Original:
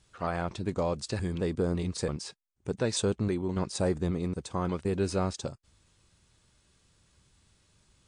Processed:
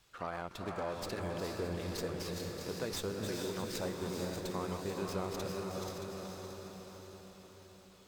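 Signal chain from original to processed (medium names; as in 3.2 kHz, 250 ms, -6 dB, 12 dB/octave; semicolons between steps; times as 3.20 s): backward echo that repeats 312 ms, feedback 48%, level -8 dB; bass shelf 330 Hz -9.5 dB; compression 2:1, threshold -44 dBFS, peak gain reduction 9.5 dB; echo that smears into a reverb 454 ms, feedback 57%, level -3 dB; sliding maximum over 3 samples; trim +1.5 dB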